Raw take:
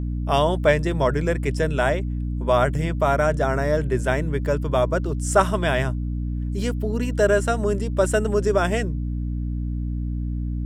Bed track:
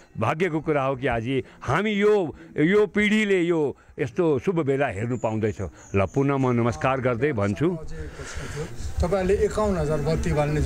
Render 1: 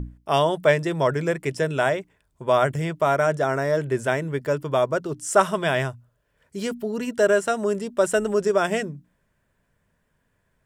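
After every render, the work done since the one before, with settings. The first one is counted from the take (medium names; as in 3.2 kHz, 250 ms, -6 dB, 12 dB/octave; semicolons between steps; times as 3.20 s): hum notches 60/120/180/240/300 Hz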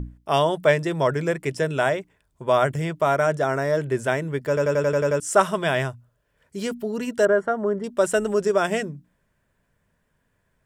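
4.48 s: stutter in place 0.09 s, 8 plays; 7.25–7.84 s: Savitzky-Golay filter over 41 samples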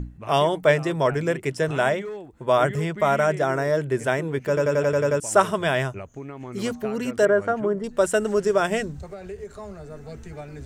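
add bed track -15 dB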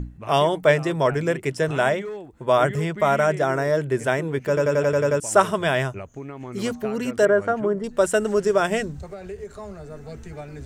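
trim +1 dB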